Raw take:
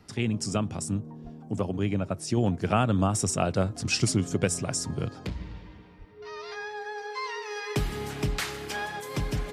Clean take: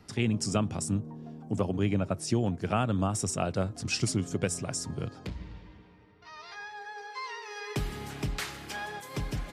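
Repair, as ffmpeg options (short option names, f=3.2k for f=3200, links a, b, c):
-filter_complex "[0:a]bandreject=f=420:w=30,asplit=3[a][b][c];[a]afade=t=out:st=1.23:d=0.02[d];[b]highpass=f=140:w=0.5412,highpass=f=140:w=1.3066,afade=t=in:st=1.23:d=0.02,afade=t=out:st=1.35:d=0.02[e];[c]afade=t=in:st=1.35:d=0.02[f];[d][e][f]amix=inputs=3:normalize=0,asplit=3[g][h][i];[g]afade=t=out:st=5.98:d=0.02[j];[h]highpass=f=140:w=0.5412,highpass=f=140:w=1.3066,afade=t=in:st=5.98:d=0.02,afade=t=out:st=6.1:d=0.02[k];[i]afade=t=in:st=6.1:d=0.02[l];[j][k][l]amix=inputs=3:normalize=0,asetnsamples=n=441:p=0,asendcmd='2.37 volume volume -4dB',volume=0dB"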